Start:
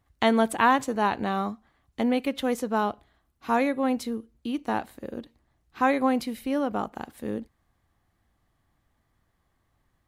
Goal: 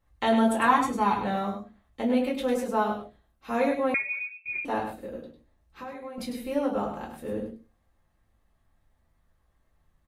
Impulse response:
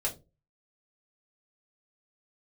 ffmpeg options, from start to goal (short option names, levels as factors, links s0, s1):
-filter_complex "[0:a]asettb=1/sr,asplit=3[s0][s1][s2];[s0]atrim=end=0.684[s3];[s1]atrim=start=0.68:end=1.18,asetpts=PTS-STARTPTS,afade=t=in:d=0.004:c=qsin,afade=t=out:st=0.496:d=0.004:c=qsin,aecho=1:1:0.9:0.68,atrim=end_sample=22050[s4];[s2]atrim=start=1.176[s5];[s3][s4]acrossfade=d=0.004:c1=hsin:c2=qsin[s6];[s6][s5]acrossfade=d=0.004:c1=qsin:c2=hsin,asettb=1/sr,asplit=3[s7][s8][s9];[s7]atrim=end=5.154[s10];[s8]atrim=start=5.15:end=6.18,asetpts=PTS-STARTPTS,afade=t=in:d=0.004:c=qsin,afade=t=out:st=1.026:d=0.004:c=qsin,acompressor=threshold=0.0112:ratio=4[s11];[s9]atrim=start=6.176[s12];[s10][s11]acrossfade=d=0.004:c1=hsin:c2=qsin[s13];[s13][s12]acrossfade=d=0.004:c1=qsin:c2=hsin,aecho=1:1:101:0.422[s14];[1:a]atrim=start_sample=2205[s15];[s14][s15]afir=irnorm=-1:irlink=0,asettb=1/sr,asplit=3[s16][s17][s18];[s16]atrim=end=3.944[s19];[s17]atrim=start=3.94:end=4.65,asetpts=PTS-STARTPTS,afade=t=in:d=0.004:c=qsin,afade=t=out:st=0.706:d=0.004:c=qsin,lowpass=f=2300:t=q:w=0.5098,lowpass=f=2300:t=q:w=0.6013,lowpass=f=2300:t=q:w=0.9,lowpass=f=2300:t=q:w=2.563,afreqshift=-2700[s20];[s18]atrim=start=4.646[s21];[s19][s20]acrossfade=d=0.004:c1=hsin:c2=qsin[s22];[s22][s21]acrossfade=d=0.004:c1=qsin:c2=hsin,volume=0.473"